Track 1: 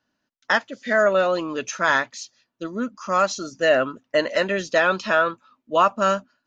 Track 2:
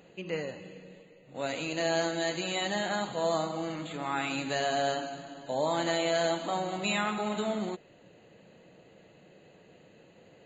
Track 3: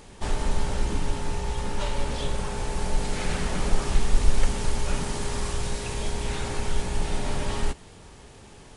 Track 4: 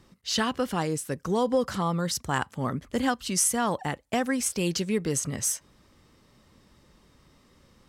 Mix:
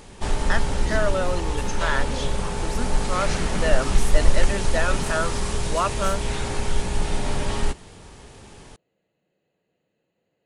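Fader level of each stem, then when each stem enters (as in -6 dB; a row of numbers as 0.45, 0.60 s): -6.5, -18.5, +3.0, -13.0 dB; 0.00, 0.00, 0.00, 0.60 s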